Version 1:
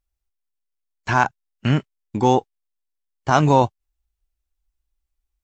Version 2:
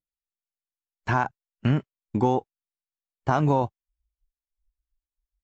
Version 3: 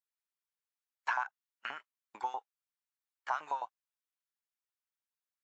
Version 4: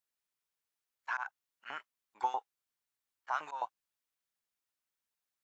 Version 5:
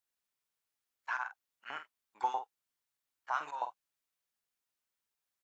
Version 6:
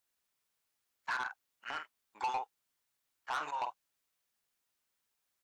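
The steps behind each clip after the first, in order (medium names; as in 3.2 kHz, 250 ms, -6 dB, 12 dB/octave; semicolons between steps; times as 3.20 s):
compression, threshold -17 dBFS, peak gain reduction 8 dB; treble shelf 2.3 kHz -11 dB; spectral noise reduction 24 dB
bass shelf 400 Hz -9 dB; compression, threshold -30 dBFS, peak gain reduction 10.5 dB; LFO high-pass saw up 9.4 Hz 780–1800 Hz; trim -3 dB
slow attack 103 ms; trim +3.5 dB
doubling 48 ms -9 dB
saturation -35 dBFS, distortion -7 dB; trim +5 dB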